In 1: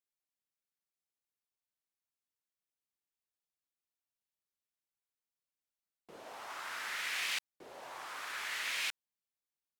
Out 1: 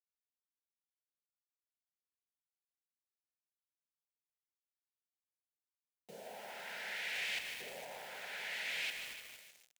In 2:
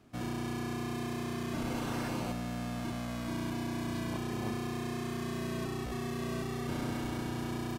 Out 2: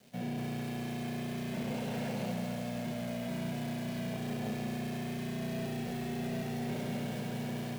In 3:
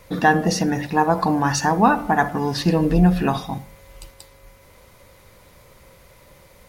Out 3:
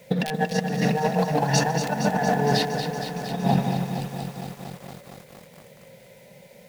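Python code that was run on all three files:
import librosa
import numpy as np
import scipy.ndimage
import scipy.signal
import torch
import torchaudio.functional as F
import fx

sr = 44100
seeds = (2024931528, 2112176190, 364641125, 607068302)

y = scipy.signal.sosfilt(scipy.signal.butter(2, 160.0, 'highpass', fs=sr, output='sos'), x)
y = fx.bass_treble(y, sr, bass_db=11, treble_db=-14)
y = fx.echo_feedback(y, sr, ms=152, feedback_pct=53, wet_db=-9)
y = fx.rev_schroeder(y, sr, rt60_s=2.2, comb_ms=26, drr_db=14.5)
y = fx.quant_dither(y, sr, seeds[0], bits=10, dither='none')
y = (np.mod(10.0 ** (3.5 / 20.0) * y + 1.0, 2.0) - 1.0) / 10.0 ** (3.5 / 20.0)
y = fx.fixed_phaser(y, sr, hz=310.0, stages=6)
y = fx.leveller(y, sr, passes=1)
y = 10.0 ** (-2.5 / 20.0) * np.tanh(y / 10.0 ** (-2.5 / 20.0))
y = fx.over_compress(y, sr, threshold_db=-20.0, ratio=-0.5)
y = fx.low_shelf(y, sr, hz=260.0, db=-8.0)
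y = fx.echo_crushed(y, sr, ms=232, feedback_pct=80, bits=7, wet_db=-8.0)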